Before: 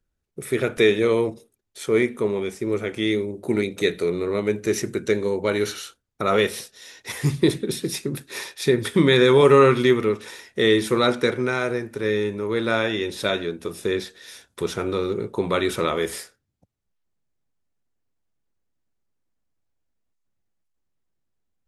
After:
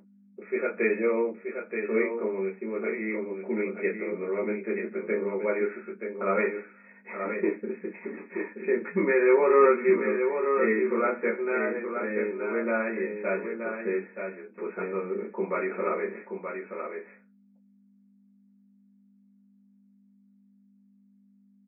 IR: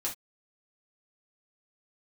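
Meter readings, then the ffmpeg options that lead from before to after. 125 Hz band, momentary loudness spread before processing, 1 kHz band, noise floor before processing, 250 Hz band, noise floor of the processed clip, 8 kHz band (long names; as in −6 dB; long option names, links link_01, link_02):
below −15 dB, 13 LU, −4.5 dB, −77 dBFS, −7.0 dB, −61 dBFS, below −40 dB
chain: -filter_complex "[0:a]aeval=exprs='val(0)+0.0251*(sin(2*PI*50*n/s)+sin(2*PI*2*50*n/s)/2+sin(2*PI*3*50*n/s)/3+sin(2*PI*4*50*n/s)/4+sin(2*PI*5*50*n/s)/5)':channel_layout=same,aecho=1:1:927:0.473[link_01];[1:a]atrim=start_sample=2205,asetrate=74970,aresample=44100[link_02];[link_01][link_02]afir=irnorm=-1:irlink=0,afftfilt=real='re*between(b*sr/4096,180,2600)':imag='im*between(b*sr/4096,180,2600)':win_size=4096:overlap=0.75,volume=-4dB"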